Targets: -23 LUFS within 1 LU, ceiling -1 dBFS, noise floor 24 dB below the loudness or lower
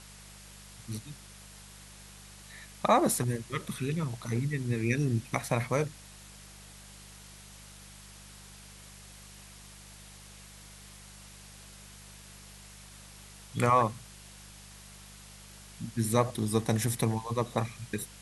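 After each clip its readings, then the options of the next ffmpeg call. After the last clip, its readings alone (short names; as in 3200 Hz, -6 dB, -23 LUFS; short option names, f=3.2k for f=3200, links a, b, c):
hum 50 Hz; harmonics up to 200 Hz; hum level -50 dBFS; noise floor -51 dBFS; noise floor target -55 dBFS; loudness -30.5 LUFS; peak -11.0 dBFS; loudness target -23.0 LUFS
-> -af "bandreject=f=50:t=h:w=4,bandreject=f=100:t=h:w=4,bandreject=f=150:t=h:w=4,bandreject=f=200:t=h:w=4"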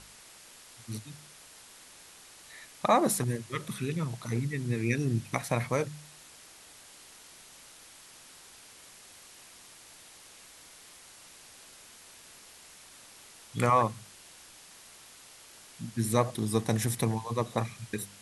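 hum none; noise floor -53 dBFS; noise floor target -55 dBFS
-> -af "afftdn=nr=6:nf=-53"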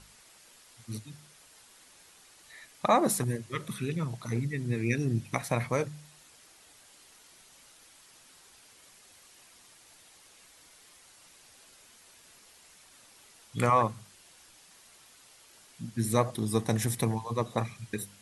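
noise floor -58 dBFS; loudness -30.5 LUFS; peak -10.5 dBFS; loudness target -23.0 LUFS
-> -af "volume=7.5dB"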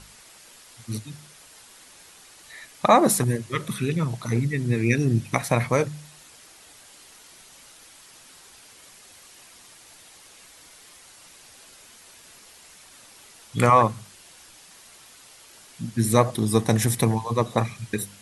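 loudness -23.0 LUFS; peak -3.0 dBFS; noise floor -50 dBFS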